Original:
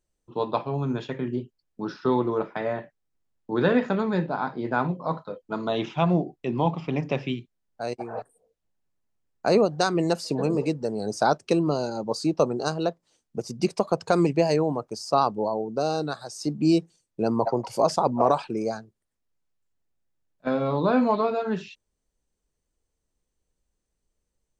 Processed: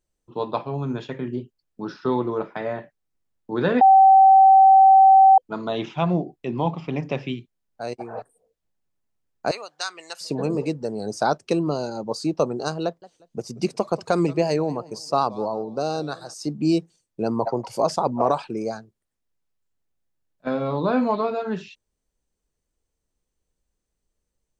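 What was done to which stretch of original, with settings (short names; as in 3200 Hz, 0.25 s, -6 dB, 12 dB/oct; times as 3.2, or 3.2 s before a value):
3.81–5.38 bleep 771 Hz -8.5 dBFS
9.51–10.21 HPF 1500 Hz
12.84–16.34 warbling echo 0.179 s, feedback 35%, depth 186 cents, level -20 dB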